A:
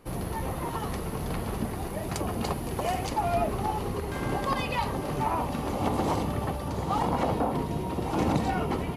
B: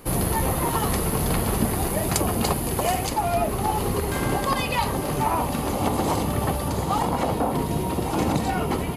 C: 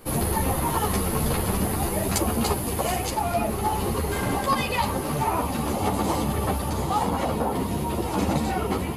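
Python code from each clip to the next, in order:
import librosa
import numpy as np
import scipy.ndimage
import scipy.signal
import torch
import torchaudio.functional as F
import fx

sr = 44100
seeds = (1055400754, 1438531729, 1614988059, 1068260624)

y1 = fx.rider(x, sr, range_db=10, speed_s=0.5)
y1 = fx.high_shelf(y1, sr, hz=6400.0, db=11.0)
y1 = fx.notch(y1, sr, hz=5700.0, q=17.0)
y1 = F.gain(torch.from_numpy(y1), 5.0).numpy()
y2 = fx.ensemble(y1, sr)
y2 = F.gain(torch.from_numpy(y2), 2.0).numpy()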